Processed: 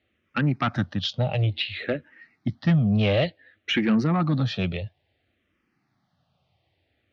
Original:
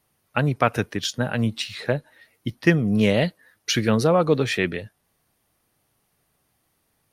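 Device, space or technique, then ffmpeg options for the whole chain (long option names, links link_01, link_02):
barber-pole phaser into a guitar amplifier: -filter_complex "[0:a]asplit=2[link_01][link_02];[link_02]afreqshift=-0.57[link_03];[link_01][link_03]amix=inputs=2:normalize=1,asoftclip=type=tanh:threshold=-18.5dB,highpass=77,equalizer=frequency=88:width_type=q:width=4:gain=6,equalizer=frequency=440:width_type=q:width=4:gain=-7,equalizer=frequency=1000:width_type=q:width=4:gain=-9,equalizer=frequency=1500:width_type=q:width=4:gain=-4,lowpass=frequency=3900:width=0.5412,lowpass=frequency=3900:width=1.3066,asettb=1/sr,asplit=3[link_04][link_05][link_06];[link_04]atrim=end=3.954[link_07];[link_05]atrim=start=3.95:end=4.62,asetpts=PTS-STARTPTS,afade=type=in:duration=0.004:curve=qsin,afade=type=out:start_time=0.666:duration=0.004:curve=qsin,equalizer=frequency=2600:width_type=o:width=0.91:gain=-5.5[link_08];[link_06]atrim=start=4.616[link_09];[link_07][link_08]acrossfade=duration=0.004:curve1=hsin:curve2=qsin[link_10];[link_10][link_09]acrossfade=duration=0.004:curve1=qsin:curve2=hsin,volume=5dB"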